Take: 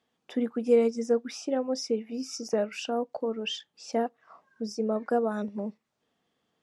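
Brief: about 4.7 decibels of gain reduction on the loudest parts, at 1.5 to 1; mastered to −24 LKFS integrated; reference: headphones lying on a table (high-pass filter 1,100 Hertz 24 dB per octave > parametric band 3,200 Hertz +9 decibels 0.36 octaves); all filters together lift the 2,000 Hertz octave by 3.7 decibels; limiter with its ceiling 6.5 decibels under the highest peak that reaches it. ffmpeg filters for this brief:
ffmpeg -i in.wav -af "equalizer=frequency=2000:width_type=o:gain=3,acompressor=threshold=-29dB:ratio=1.5,alimiter=limit=-22.5dB:level=0:latency=1,highpass=frequency=1100:width=0.5412,highpass=frequency=1100:width=1.3066,equalizer=frequency=3200:width_type=o:width=0.36:gain=9,volume=13dB" out.wav

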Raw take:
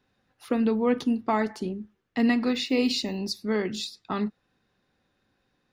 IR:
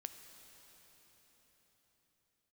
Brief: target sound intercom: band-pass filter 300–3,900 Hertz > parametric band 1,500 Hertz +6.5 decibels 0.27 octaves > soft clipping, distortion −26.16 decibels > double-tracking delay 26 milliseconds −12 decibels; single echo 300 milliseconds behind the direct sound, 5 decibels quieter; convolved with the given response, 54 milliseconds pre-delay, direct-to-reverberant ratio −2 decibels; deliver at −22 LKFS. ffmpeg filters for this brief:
-filter_complex "[0:a]aecho=1:1:300:0.562,asplit=2[link_01][link_02];[1:a]atrim=start_sample=2205,adelay=54[link_03];[link_02][link_03]afir=irnorm=-1:irlink=0,volume=6dB[link_04];[link_01][link_04]amix=inputs=2:normalize=0,highpass=300,lowpass=3900,equalizer=frequency=1500:width_type=o:width=0.27:gain=6.5,asoftclip=threshold=-9.5dB,asplit=2[link_05][link_06];[link_06]adelay=26,volume=-12dB[link_07];[link_05][link_07]amix=inputs=2:normalize=0,volume=3.5dB"

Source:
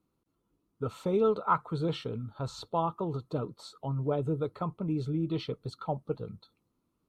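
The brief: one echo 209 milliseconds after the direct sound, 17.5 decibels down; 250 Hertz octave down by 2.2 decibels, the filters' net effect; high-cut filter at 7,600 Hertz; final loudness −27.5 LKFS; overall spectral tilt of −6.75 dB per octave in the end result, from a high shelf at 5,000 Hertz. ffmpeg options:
ffmpeg -i in.wav -af "lowpass=7600,equalizer=frequency=250:width_type=o:gain=-3.5,highshelf=frequency=5000:gain=-3.5,aecho=1:1:209:0.133,volume=6.5dB" out.wav

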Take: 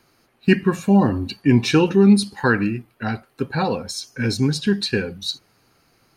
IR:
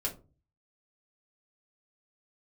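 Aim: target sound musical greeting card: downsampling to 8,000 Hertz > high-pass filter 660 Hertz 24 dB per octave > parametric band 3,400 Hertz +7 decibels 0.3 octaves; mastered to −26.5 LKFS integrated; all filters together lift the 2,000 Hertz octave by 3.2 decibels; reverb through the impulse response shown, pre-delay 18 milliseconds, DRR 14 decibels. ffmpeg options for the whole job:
-filter_complex "[0:a]equalizer=frequency=2000:width_type=o:gain=4,asplit=2[link_01][link_02];[1:a]atrim=start_sample=2205,adelay=18[link_03];[link_02][link_03]afir=irnorm=-1:irlink=0,volume=-17dB[link_04];[link_01][link_04]amix=inputs=2:normalize=0,aresample=8000,aresample=44100,highpass=frequency=660:width=0.5412,highpass=frequency=660:width=1.3066,equalizer=frequency=3400:width_type=o:width=0.3:gain=7"

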